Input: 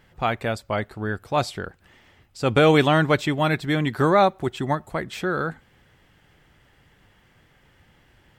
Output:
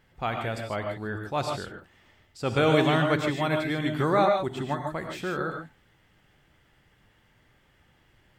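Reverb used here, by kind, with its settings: gated-style reverb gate 170 ms rising, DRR 3 dB; trim -6.5 dB

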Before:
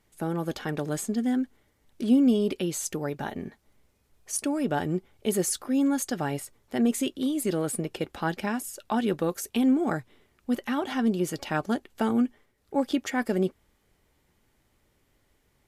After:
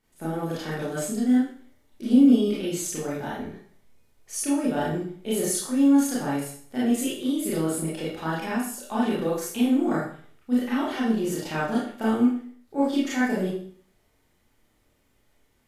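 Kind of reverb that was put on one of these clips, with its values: Schroeder reverb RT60 0.51 s, combs from 25 ms, DRR -8 dB; trim -7 dB

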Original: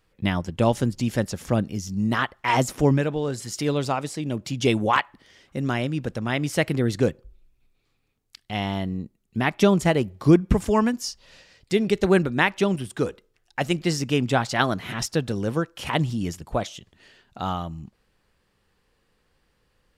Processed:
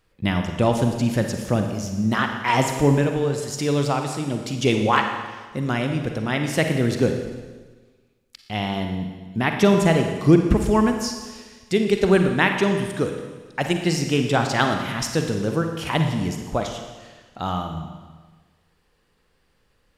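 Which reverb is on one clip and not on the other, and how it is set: Schroeder reverb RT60 1.4 s, DRR 4.5 dB; trim +1 dB

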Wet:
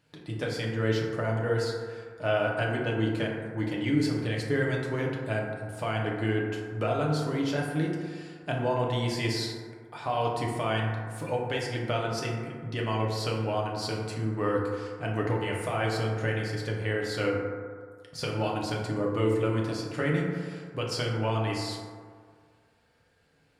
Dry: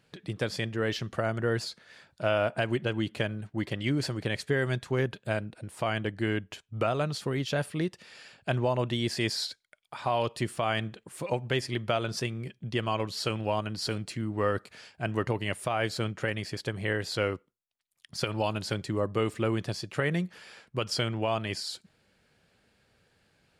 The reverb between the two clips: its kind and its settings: FDN reverb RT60 1.9 s, low-frequency decay 0.85×, high-frequency decay 0.3×, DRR -2.5 dB; trim -4 dB

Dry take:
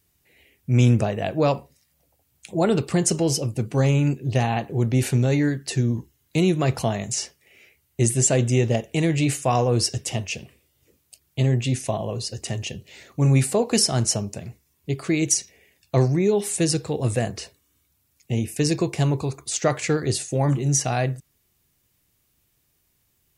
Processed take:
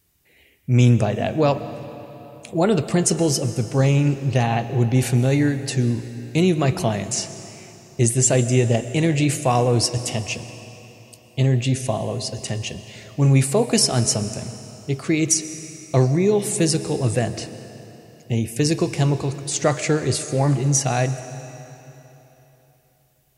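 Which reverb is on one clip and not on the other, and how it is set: algorithmic reverb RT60 3.5 s, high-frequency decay 0.9×, pre-delay 85 ms, DRR 12 dB; trim +2 dB

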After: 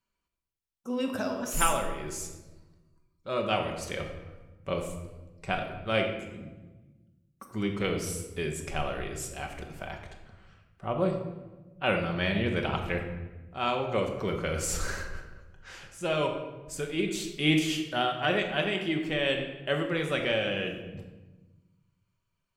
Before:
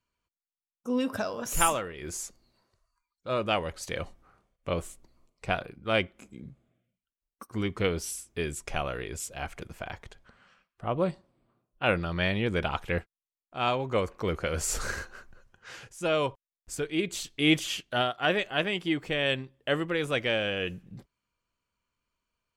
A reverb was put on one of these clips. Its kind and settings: simulated room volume 670 m³, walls mixed, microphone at 1.1 m; trim -2.5 dB

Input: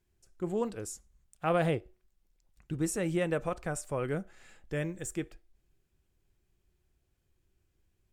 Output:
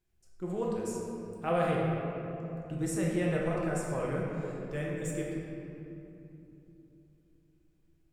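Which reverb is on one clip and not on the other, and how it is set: simulated room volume 150 m³, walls hard, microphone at 0.66 m; trim -5 dB

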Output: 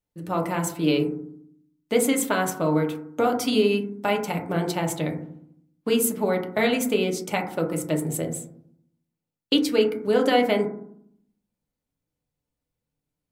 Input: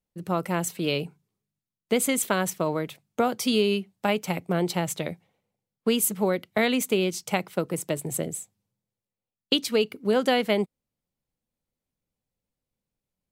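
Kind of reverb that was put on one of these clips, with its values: FDN reverb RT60 0.66 s, low-frequency decay 1.5×, high-frequency decay 0.25×, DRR 1.5 dB; trim -1 dB

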